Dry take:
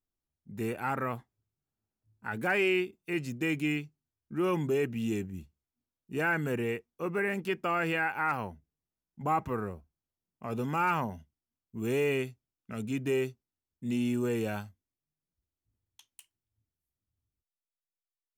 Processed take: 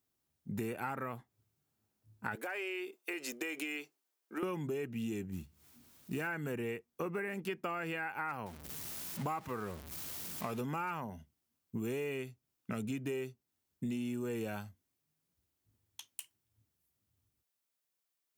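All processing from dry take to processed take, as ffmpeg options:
-filter_complex "[0:a]asettb=1/sr,asplit=3[a][b][c];[a]atrim=end=2.354[d];[b]atrim=start=2.35:end=4.43,asetpts=PTS-STARTPTS,afade=t=in:d=0.004:c=qsin,afade=t=out:st=2.076:d=0.004:c=qsin,highpass=f=380:w=0.5412,highpass=f=380:w=1.3066,acompressor=threshold=-38dB:ratio=6:attack=3.2:release=140:knee=1:detection=peak[e];[c]atrim=start=4.426[f];[d][e]acrossfade=d=0.004:c1=hsin:c2=qsin[g];[g][f]acrossfade=d=0.004:c1=qsin:c2=hsin,asettb=1/sr,asplit=3[h][i][j];[h]atrim=end=5.324[k];[i]atrim=start=5.32:end=6.27,asetpts=PTS-STARTPTS,afade=t=in:d=0.004:c=qsin,afade=t=out:st=0.946:d=0.004:c=qsin,equalizer=f=550:w=1.2:g=-4,acompressor=mode=upward:threshold=-51dB:ratio=2.5:attack=3.2:release=140:knee=2.83:detection=peak,acrusher=bits=6:mode=log:mix=0:aa=0.000001[l];[j]atrim=start=6.266[m];[k][l]acrossfade=d=0.004:c1=hsin:c2=qsin[n];[n][m]acrossfade=d=0.004:c1=qsin:c2=hsin,asettb=1/sr,asplit=3[o][p][q];[o]atrim=end=8.464[r];[p]atrim=start=8.46:end=10.61,asetpts=PTS-STARTPTS,afade=t=in:d=0.004:c=qsin,afade=t=out:st=2.146:d=0.004:c=qsin,aeval=exprs='val(0)+0.5*0.00531*sgn(val(0))':c=same,tiltshelf=f=1.1k:g=-3.5[s];[q]atrim=start=10.606[t];[r][s]acrossfade=d=0.004:c1=hsin:c2=qsin[u];[u][t]acrossfade=d=0.004:c1=qsin:c2=hsin,highpass=85,highshelf=f=11k:g=5,acompressor=threshold=-43dB:ratio=8,volume=7.5dB"

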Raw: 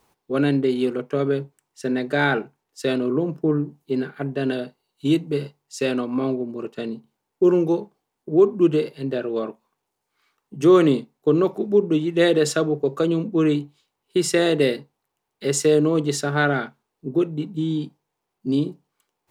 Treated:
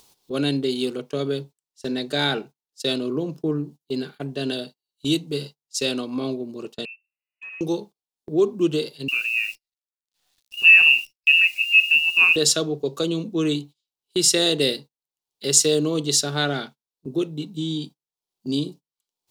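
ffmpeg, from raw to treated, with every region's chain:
-filter_complex "[0:a]asettb=1/sr,asplit=3[a][b][c];[a]atrim=end=6.854[d];[b]atrim=start=6.85:end=7.61,asetpts=PTS-STARTPTS,afade=t=in:d=0.004:c=qsin,afade=t=out:st=0.756:d=0.004:c=qsin,asoftclip=type=hard:threshold=-21.5dB,acompressor=threshold=-36dB:ratio=16:attack=3.2:release=140:knee=1:detection=peak,lowpass=f=2.5k:t=q:w=0.5098,lowpass=f=2.5k:t=q:w=0.6013,lowpass=f=2.5k:t=q:w=0.9,lowpass=f=2.5k:t=q:w=2.563,afreqshift=-2900[e];[c]atrim=start=7.606[f];[d][e]acrossfade=d=0.004:c1=hsin:c2=qsin[g];[g][f]acrossfade=d=0.004:c1=qsin:c2=hsin,asettb=1/sr,asplit=3[h][i][j];[h]atrim=end=9.084[k];[i]atrim=start=9.08:end=12.36,asetpts=PTS-STARTPTS,afade=t=in:d=0.004:c=qsin,afade=t=out:st=3.276:d=0.004:c=qsin,lowpass=f=2.6k:t=q:w=0.5098,lowpass=f=2.6k:t=q:w=0.6013,lowpass=f=2.6k:t=q:w=0.9,lowpass=f=2.6k:t=q:w=2.563,afreqshift=-3000,acrusher=bits=9:dc=4:mix=0:aa=0.000001[l];[j]atrim=start=12.356[m];[k][l]acrossfade=d=0.004:c1=hsin:c2=qsin[n];[n][m]acrossfade=d=0.004:c1=qsin:c2=hsin,agate=range=-25dB:threshold=-36dB:ratio=16:detection=peak,highshelf=f=2.7k:t=q:w=1.5:g=11.5,acompressor=mode=upward:threshold=-31dB:ratio=2.5,volume=-3.5dB"

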